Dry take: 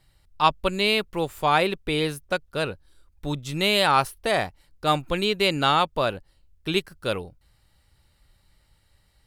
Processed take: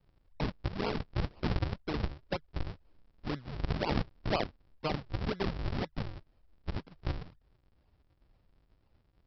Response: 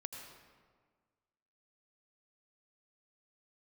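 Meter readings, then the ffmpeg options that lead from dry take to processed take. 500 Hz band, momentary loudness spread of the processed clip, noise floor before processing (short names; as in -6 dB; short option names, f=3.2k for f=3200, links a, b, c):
-13.5 dB, 9 LU, -64 dBFS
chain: -filter_complex "[0:a]alimiter=limit=-15dB:level=0:latency=1:release=154,acrossover=split=180[a][b];[a]acompressor=threshold=-41dB:ratio=6[c];[c][b]amix=inputs=2:normalize=0,aresample=11025,acrusher=samples=29:mix=1:aa=0.000001:lfo=1:lforange=46.4:lforate=2,aresample=44100,volume=-6dB"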